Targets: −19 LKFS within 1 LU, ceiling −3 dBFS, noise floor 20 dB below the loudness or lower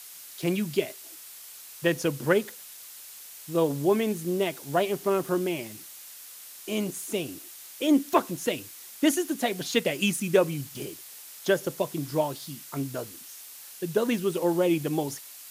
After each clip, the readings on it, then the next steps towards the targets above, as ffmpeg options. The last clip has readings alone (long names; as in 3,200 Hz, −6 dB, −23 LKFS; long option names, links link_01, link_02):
background noise floor −46 dBFS; target noise floor −48 dBFS; integrated loudness −27.5 LKFS; sample peak −7.0 dBFS; target loudness −19.0 LKFS
→ -af "afftdn=noise_reduction=6:noise_floor=-46"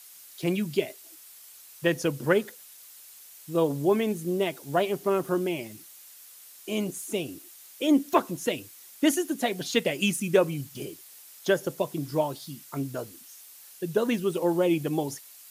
background noise floor −50 dBFS; integrated loudness −28.0 LKFS; sample peak −7.0 dBFS; target loudness −19.0 LKFS
→ -af "volume=9dB,alimiter=limit=-3dB:level=0:latency=1"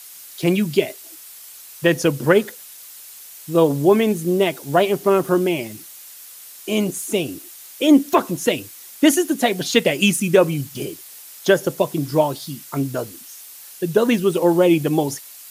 integrated loudness −19.0 LKFS; sample peak −3.0 dBFS; background noise floor −41 dBFS